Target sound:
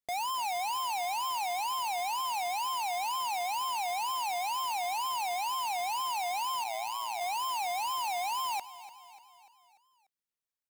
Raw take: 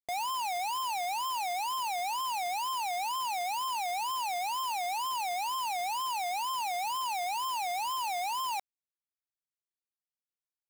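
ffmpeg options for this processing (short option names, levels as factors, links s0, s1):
-filter_complex "[0:a]asplit=3[s0][s1][s2];[s0]afade=t=out:st=6.63:d=0.02[s3];[s1]aeval=exprs='val(0)*sin(2*PI*57*n/s)':c=same,afade=t=in:st=6.63:d=0.02,afade=t=out:st=7.19:d=0.02[s4];[s2]afade=t=in:st=7.19:d=0.02[s5];[s3][s4][s5]amix=inputs=3:normalize=0,aecho=1:1:294|588|882|1176|1470:0.158|0.0856|0.0462|0.025|0.0135"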